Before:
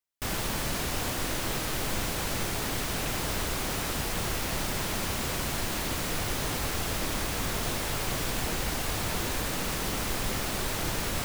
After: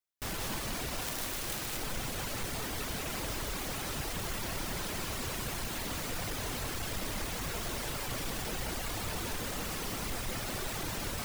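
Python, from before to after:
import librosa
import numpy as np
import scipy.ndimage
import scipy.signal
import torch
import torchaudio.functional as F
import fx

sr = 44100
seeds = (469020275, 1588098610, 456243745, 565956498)

y = fx.dereverb_blind(x, sr, rt60_s=1.8)
y = np.clip(10.0 ** (30.0 / 20.0) * y, -1.0, 1.0) / 10.0 ** (30.0 / 20.0)
y = y + 10.0 ** (-3.0 / 20.0) * np.pad(y, (int(183 * sr / 1000.0), 0))[:len(y)]
y = fx.overflow_wrap(y, sr, gain_db=27.5, at=(1.01, 1.77))
y = F.gain(torch.from_numpy(y), -3.0).numpy()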